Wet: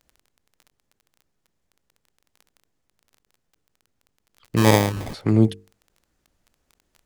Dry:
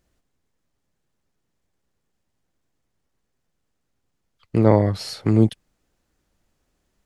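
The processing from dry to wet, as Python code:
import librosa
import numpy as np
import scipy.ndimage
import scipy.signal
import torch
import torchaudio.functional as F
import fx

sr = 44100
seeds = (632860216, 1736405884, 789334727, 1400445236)

y = fx.dmg_crackle(x, sr, seeds[0], per_s=17.0, level_db=-34.0)
y = fx.hum_notches(y, sr, base_hz=50, count=9)
y = fx.sample_hold(y, sr, seeds[1], rate_hz=1400.0, jitter_pct=0, at=(4.56, 5.13), fade=0.02)
y = fx.end_taper(y, sr, db_per_s=370.0)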